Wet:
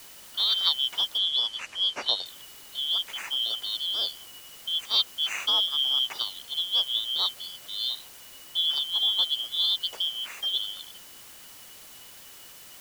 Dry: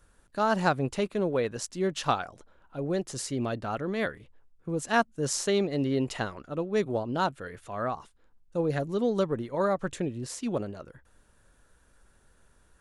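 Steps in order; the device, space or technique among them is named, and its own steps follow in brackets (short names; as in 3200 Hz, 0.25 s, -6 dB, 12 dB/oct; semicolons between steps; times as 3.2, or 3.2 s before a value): split-band scrambled radio (four-band scrambler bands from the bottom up 3412; BPF 380–3200 Hz; white noise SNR 18 dB); 1.18–2.26 LPF 7600 Hz 12 dB/oct; gain +4.5 dB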